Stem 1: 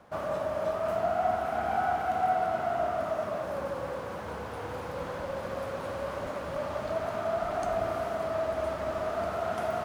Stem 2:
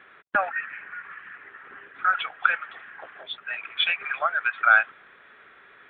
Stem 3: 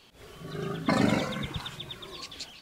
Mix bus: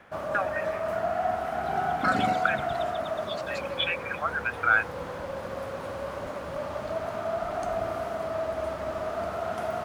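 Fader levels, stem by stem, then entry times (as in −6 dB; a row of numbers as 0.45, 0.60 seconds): 0.0, −5.0, −6.0 decibels; 0.00, 0.00, 1.15 seconds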